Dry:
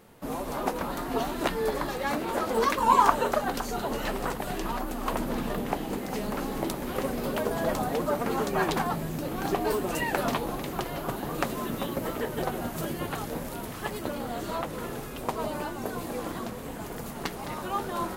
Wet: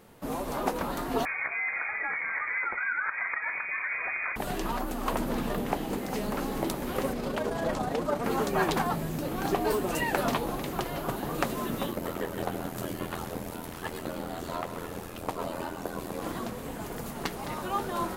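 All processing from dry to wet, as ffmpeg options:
ffmpeg -i in.wav -filter_complex "[0:a]asettb=1/sr,asplit=3[link_01][link_02][link_03];[link_01]atrim=end=1.254[link_04];[link_02]atrim=start=1.25:end=4.36,asetpts=PTS-STARTPTS,afade=type=in:duration=0.004:curve=qsin,afade=type=out:start_time=3.106:duration=0.004:curve=qsin,acompressor=threshold=-27dB:ratio=6:attack=3.2:release=140:knee=1:detection=peak,lowpass=frequency=2100:width_type=q:width=0.5098,lowpass=frequency=2100:width_type=q:width=0.6013,lowpass=frequency=2100:width_type=q:width=0.9,lowpass=frequency=2100:width_type=q:width=2.563,afreqshift=-2500[link_05];[link_03]atrim=start=4.356[link_06];[link_04][link_05]acrossfade=duration=0.004:curve1=hsin:curve2=qsin[link_07];[link_07][link_06]acrossfade=duration=0.004:curve1=qsin:curve2=hsin,asettb=1/sr,asplit=3[link_08][link_09][link_10];[link_08]atrim=end=7.134[link_11];[link_09]atrim=start=7.13:end=8.24,asetpts=PTS-STARTPTS,afade=type=in:duration=0.004:curve=qsin,afade=type=out:start_time=1.106:duration=0.004:curve=qsin,acrossover=split=9100[link_12][link_13];[link_13]acompressor=threshold=-58dB:ratio=4:attack=1:release=60[link_14];[link_12][link_14]amix=inputs=2:normalize=0,tremolo=f=28:d=0.4[link_15];[link_10]atrim=start=8.236[link_16];[link_11][link_15]acrossfade=duration=0.004:curve1=hsin:curve2=qsin[link_17];[link_17][link_16]acrossfade=duration=0.004:curve1=qsin:curve2=hsin,asettb=1/sr,asplit=3[link_18][link_19][link_20];[link_18]atrim=end=11.914[link_21];[link_19]atrim=start=11.91:end=16.22,asetpts=PTS-STARTPTS,afade=type=in:duration=0.004:curve=qsin,afade=type=out:start_time=4.306:duration=0.004:curve=qsin,aeval=exprs='val(0)*sin(2*PI*42*n/s)':channel_layout=same,aecho=1:1:132:0.299,atrim=end_sample=190071[link_22];[link_20]atrim=start=16.216[link_23];[link_21][link_22]acrossfade=duration=0.004:curve1=hsin:curve2=qsin[link_24];[link_24][link_23]acrossfade=duration=0.004:curve1=qsin:curve2=hsin" out.wav

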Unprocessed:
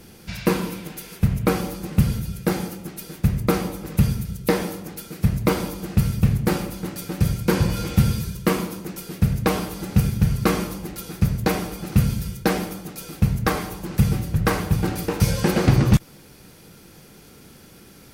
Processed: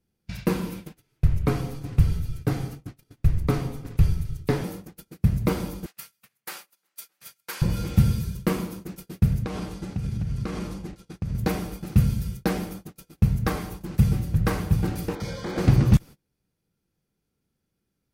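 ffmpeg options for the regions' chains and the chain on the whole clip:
ffmpeg -i in.wav -filter_complex "[0:a]asettb=1/sr,asplit=3[link_01][link_02][link_03];[link_01]atrim=end=0.974[link_04];[link_02]atrim=start=0.97:end=4.64,asetpts=PTS-STARTPTS,afade=type=in:duration=0.004:curve=qsin,afade=type=out:start_time=3.666:duration=0.004:curve=qsin,highshelf=frequency=9500:gain=-8,acompressor=mode=upward:threshold=-33dB:ratio=2.5:attack=3.2:release=140:knee=2.83:detection=peak,afreqshift=-49[link_05];[link_03]atrim=start=4.636[link_06];[link_04][link_05]acrossfade=duration=0.004:curve1=hsin:curve2=qsin[link_07];[link_07][link_06]acrossfade=duration=0.004:curve1=qsin:curve2=hsin,asettb=1/sr,asplit=3[link_08][link_09][link_10];[link_08]atrim=end=5.864[link_11];[link_09]atrim=start=5.86:end=7.62,asetpts=PTS-STARTPTS,afade=type=in:duration=0.004:curve=qsin,afade=type=out:start_time=1.756:duration=0.004:curve=qsin,highpass=1300,highshelf=frequency=9600:gain=5[link_12];[link_10]atrim=start=7.616[link_13];[link_11][link_12]acrossfade=duration=0.004:curve1=hsin:curve2=qsin[link_14];[link_14][link_13]acrossfade=duration=0.004:curve1=qsin:curve2=hsin,asettb=1/sr,asplit=3[link_15][link_16][link_17];[link_15]atrim=end=9.444[link_18];[link_16]atrim=start=9.44:end=11.35,asetpts=PTS-STARTPTS,afade=type=in:duration=0.004:curve=qsin,afade=type=out:start_time=1.906:duration=0.004:curve=qsin,lowpass=8200,acompressor=threshold=-22dB:ratio=10:attack=3.2:release=140:knee=1:detection=peak[link_19];[link_17]atrim=start=11.346[link_20];[link_18][link_19]acrossfade=duration=0.004:curve1=hsin:curve2=qsin[link_21];[link_21][link_20]acrossfade=duration=0.004:curve1=qsin:curve2=hsin,asettb=1/sr,asplit=3[link_22][link_23][link_24];[link_22]atrim=end=15.154[link_25];[link_23]atrim=start=15.15:end=15.58,asetpts=PTS-STARTPTS,afade=type=in:duration=0.004:curve=qsin,afade=type=out:start_time=0.426:duration=0.004:curve=qsin,acrossover=split=230 5700:gain=0.2 1 0.141[link_26][link_27][link_28];[link_26][link_27][link_28]amix=inputs=3:normalize=0,volume=23dB,asoftclip=hard,volume=-23dB,asuperstop=centerf=2700:order=8:qfactor=5.8[link_29];[link_24]atrim=start=15.576[link_30];[link_25][link_29]acrossfade=duration=0.004:curve1=hsin:curve2=qsin[link_31];[link_31][link_30]acrossfade=duration=0.004:curve1=qsin:curve2=hsin,agate=range=-28dB:threshold=-33dB:ratio=16:detection=peak,lowshelf=frequency=220:gain=8,volume=-7dB" out.wav

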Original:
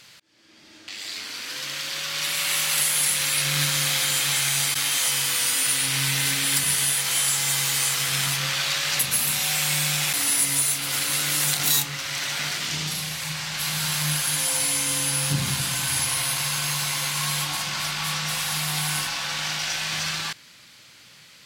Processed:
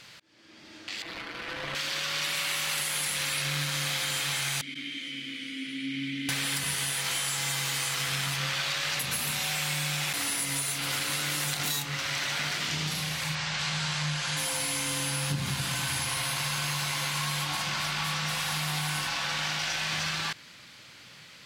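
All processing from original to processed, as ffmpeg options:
ffmpeg -i in.wav -filter_complex "[0:a]asettb=1/sr,asplit=3[link_01][link_02][link_03];[link_01]atrim=end=1.024[link_04];[link_02]atrim=start=1.02:end=1.75,asetpts=PTS-STARTPTS,afade=type=in:duration=0.004:curve=qsin,afade=type=out:start_time=0.726:duration=0.004:curve=qsin,aecho=1:1:6:0.82,atrim=end_sample=32193,aeval=exprs='(mod(11.9*val(0)+1,2)-1)/11.9':channel_layout=same,adynamicsmooth=sensitivity=3:basefreq=880[link_05];[link_03]atrim=start=1.746[link_06];[link_04][link_05]acrossfade=duration=0.004:curve1=hsin:curve2=qsin[link_07];[link_07][link_06]acrossfade=duration=0.004:curve1=qsin:curve2=hsin,asettb=1/sr,asplit=3[link_08][link_09][link_10];[link_08]atrim=end=4.614[link_11];[link_09]atrim=start=4.61:end=6.29,asetpts=PTS-STARTPTS,afade=type=in:duration=0.004:curve=qsin,afade=type=out:start_time=1.676:duration=0.004:curve=qsin,asplit=3[link_12][link_13][link_14];[link_12]bandpass=frequency=270:width_type=q:width=8,volume=0dB[link_15];[link_13]bandpass=frequency=2290:width_type=q:width=8,volume=-6dB[link_16];[link_14]bandpass=frequency=3010:width_type=q:width=8,volume=-9dB[link_17];[link_15][link_16][link_17]amix=inputs=3:normalize=0,equalizer=frequency=220:width=0.51:gain=7[link_18];[link_10]atrim=start=6.286[link_19];[link_11][link_18]acrossfade=duration=0.004:curve1=hsin:curve2=qsin[link_20];[link_20][link_19]acrossfade=duration=0.004:curve1=qsin:curve2=hsin,asettb=1/sr,asplit=3[link_21][link_22][link_23];[link_21]atrim=end=13.354[link_24];[link_22]atrim=start=13.35:end=14.37,asetpts=PTS-STARTPTS,afade=type=in:duration=0.004:curve=qsin,afade=type=out:start_time=1.016:duration=0.004:curve=qsin,lowpass=frequency=7800:width=0.5412,lowpass=frequency=7800:width=1.3066,equalizer=frequency=290:width=3.5:gain=-7[link_25];[link_23]atrim=start=14.366[link_26];[link_24][link_25]acrossfade=duration=0.004:curve1=hsin:curve2=qsin[link_27];[link_27][link_26]acrossfade=duration=0.004:curve1=qsin:curve2=hsin,highshelf=frequency=5500:gain=-9,acompressor=threshold=-29dB:ratio=6,volume=2dB" out.wav

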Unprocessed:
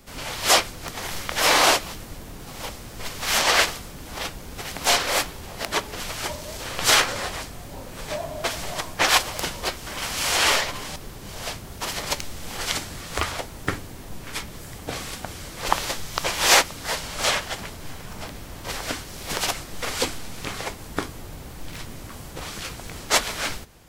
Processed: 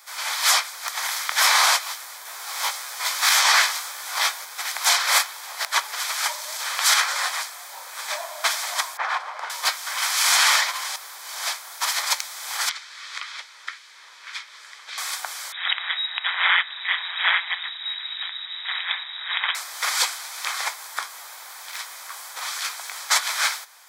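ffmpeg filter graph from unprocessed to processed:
ffmpeg -i in.wav -filter_complex "[0:a]asettb=1/sr,asplit=3[link_01][link_02][link_03];[link_01]atrim=end=2.254[link_04];[link_02]atrim=start=2.25:end=4.45,asetpts=PTS-STARTPTS,afade=type=in:duration=0.004:curve=qsin,afade=type=out:start_time=2.196:duration=0.004:curve=qsin,flanger=delay=15:depth=4.4:speed=1.7,acontrast=78[link_05];[link_03]atrim=start=4.446[link_06];[link_04][link_05]acrossfade=duration=0.004:curve1=hsin:curve2=qsin[link_07];[link_07][link_06]acrossfade=duration=0.004:curve1=qsin:curve2=hsin,asettb=1/sr,asplit=3[link_08][link_09][link_10];[link_08]atrim=end=8.974[link_11];[link_09]atrim=start=8.97:end=9.5,asetpts=PTS-STARTPTS,afade=type=in:duration=0.004:curve=qsin,afade=type=out:start_time=0.526:duration=0.004:curve=qsin,lowpass=1200,aemphasis=mode=production:type=50kf,acompressor=threshold=-26dB:ratio=3:attack=3.2:release=140:knee=1:detection=peak[link_12];[link_10]atrim=start=9.496[link_13];[link_11][link_12]acrossfade=duration=0.004:curve1=hsin:curve2=qsin[link_14];[link_14][link_13]acrossfade=duration=0.004:curve1=qsin:curve2=hsin,asettb=1/sr,asplit=3[link_15][link_16][link_17];[link_15]atrim=end=12.694[link_18];[link_16]atrim=start=12.69:end=14.98,asetpts=PTS-STARTPTS,afade=type=in:duration=0.004:curve=qsin,afade=type=out:start_time=2.286:duration=0.004:curve=qsin,lowpass=3900,equalizer=frequency=730:width_type=o:width=0.61:gain=-11,acrossover=split=130|2100[link_19][link_20][link_21];[link_19]acompressor=threshold=-37dB:ratio=4[link_22];[link_20]acompressor=threshold=-46dB:ratio=4[link_23];[link_21]acompressor=threshold=-38dB:ratio=4[link_24];[link_22][link_23][link_24]amix=inputs=3:normalize=0[link_25];[link_17]atrim=start=14.976[link_26];[link_18][link_25]acrossfade=duration=0.004:curve1=hsin:curve2=qsin[link_27];[link_27][link_26]acrossfade=duration=0.004:curve1=qsin:curve2=hsin,asettb=1/sr,asplit=3[link_28][link_29][link_30];[link_28]atrim=end=15.524[link_31];[link_29]atrim=start=15.52:end=19.55,asetpts=PTS-STARTPTS,afade=type=in:duration=0.004:curve=qsin,afade=type=out:start_time=4.026:duration=0.004:curve=qsin,equalizer=frequency=2000:width=4.2:gain=7,aeval=exprs='val(0)*sin(2*PI*89*n/s)':channel_layout=same,lowpass=frequency=3300:width_type=q:width=0.5098,lowpass=frequency=3300:width_type=q:width=0.6013,lowpass=frequency=3300:width_type=q:width=0.9,lowpass=frequency=3300:width_type=q:width=2.563,afreqshift=-3900[link_32];[link_30]atrim=start=19.546[link_33];[link_31][link_32]acrossfade=duration=0.004:curve1=hsin:curve2=qsin[link_34];[link_34][link_33]acrossfade=duration=0.004:curve1=qsin:curve2=hsin,highpass=frequency=900:width=0.5412,highpass=frequency=900:width=1.3066,bandreject=frequency=2800:width=5.1,alimiter=limit=-14dB:level=0:latency=1:release=204,volume=7dB" out.wav

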